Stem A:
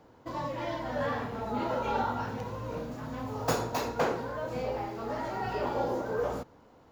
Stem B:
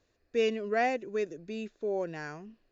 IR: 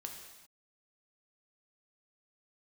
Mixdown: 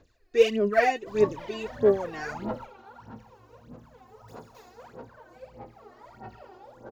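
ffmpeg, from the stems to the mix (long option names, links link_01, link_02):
-filter_complex "[0:a]flanger=delay=1.2:depth=9.4:regen=-62:speed=1.3:shape=sinusoidal,alimiter=level_in=6dB:limit=-24dB:level=0:latency=1:release=87,volume=-6dB,adelay=800,volume=-7.5dB,asplit=2[link_01][link_02];[link_02]volume=-4dB[link_03];[1:a]volume=1.5dB,asplit=2[link_04][link_05];[link_05]apad=whole_len=340048[link_06];[link_01][link_06]sidechaingate=range=-33dB:threshold=-60dB:ratio=16:detection=peak[link_07];[2:a]atrim=start_sample=2205[link_08];[link_03][link_08]afir=irnorm=-1:irlink=0[link_09];[link_07][link_04][link_09]amix=inputs=3:normalize=0,aphaser=in_gain=1:out_gain=1:delay=2.8:decay=0.77:speed=1.6:type=sinusoidal"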